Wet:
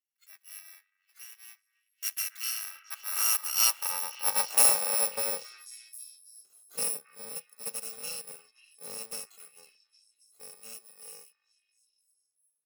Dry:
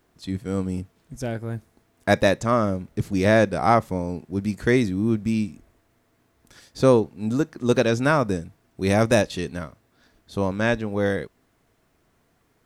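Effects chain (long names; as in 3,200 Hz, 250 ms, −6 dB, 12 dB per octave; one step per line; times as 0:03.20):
samples in bit-reversed order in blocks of 128 samples
source passing by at 0:04.42, 8 m/s, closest 3.5 metres
on a send: echo through a band-pass that steps 271 ms, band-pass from 1,600 Hz, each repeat 0.7 octaves, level −11 dB
on the sum: noise reduction from a noise print of the clip's start 9 dB
high-pass filter sweep 1,900 Hz → 380 Hz, 0:02.18–0:06.09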